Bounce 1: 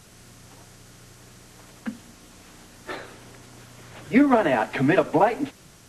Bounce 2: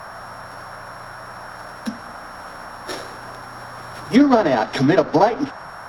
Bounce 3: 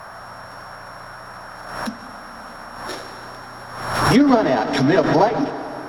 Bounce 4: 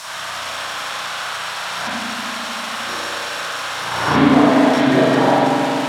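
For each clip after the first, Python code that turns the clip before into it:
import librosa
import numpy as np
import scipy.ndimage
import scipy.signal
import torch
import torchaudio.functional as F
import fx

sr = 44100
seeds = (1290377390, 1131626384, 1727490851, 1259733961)

y1 = np.r_[np.sort(x[:len(x) // 8 * 8].reshape(-1, 8), axis=1).ravel(), x[len(x) // 8 * 8:]]
y1 = fx.dmg_noise_band(y1, sr, seeds[0], low_hz=550.0, high_hz=1600.0, level_db=-41.0)
y1 = fx.env_lowpass_down(y1, sr, base_hz=2200.0, full_db=-16.5)
y1 = y1 * librosa.db_to_amplitude(4.5)
y2 = fx.rev_plate(y1, sr, seeds[1], rt60_s=3.1, hf_ratio=0.9, predelay_ms=120, drr_db=10.0)
y2 = fx.pre_swell(y2, sr, db_per_s=53.0)
y2 = y2 * librosa.db_to_amplitude(-1.5)
y3 = y2 + 0.5 * 10.0 ** (-9.0 / 20.0) * np.diff(np.sign(y2), prepend=np.sign(y2[:1]))
y3 = fx.bandpass_edges(y3, sr, low_hz=130.0, high_hz=6300.0)
y3 = fx.rev_spring(y3, sr, rt60_s=2.9, pass_ms=(34, 45), chirp_ms=25, drr_db=-10.0)
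y3 = y3 * librosa.db_to_amplitude(-7.5)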